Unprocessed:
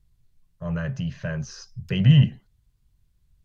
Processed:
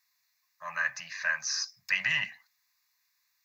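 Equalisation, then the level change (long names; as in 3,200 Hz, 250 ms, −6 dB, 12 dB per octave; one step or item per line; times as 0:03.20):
high-pass with resonance 1,400 Hz, resonance Q 3.9
high-shelf EQ 4,200 Hz +9 dB
phaser with its sweep stopped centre 2,100 Hz, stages 8
+5.5 dB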